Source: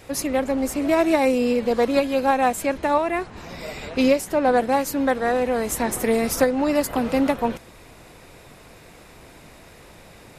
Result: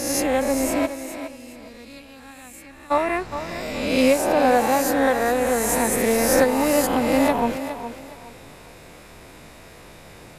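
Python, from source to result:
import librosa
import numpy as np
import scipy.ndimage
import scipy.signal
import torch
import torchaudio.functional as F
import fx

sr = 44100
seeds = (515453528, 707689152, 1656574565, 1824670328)

y = fx.spec_swells(x, sr, rise_s=1.16)
y = fx.tone_stack(y, sr, knobs='6-0-2', at=(0.85, 2.9), fade=0.02)
y = fx.echo_thinned(y, sr, ms=413, feedback_pct=28, hz=180.0, wet_db=-10.0)
y = y * 10.0 ** (-1.0 / 20.0)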